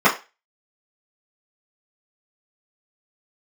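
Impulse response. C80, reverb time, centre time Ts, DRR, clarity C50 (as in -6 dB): 18.0 dB, 0.30 s, 20 ms, -11.5 dB, 11.5 dB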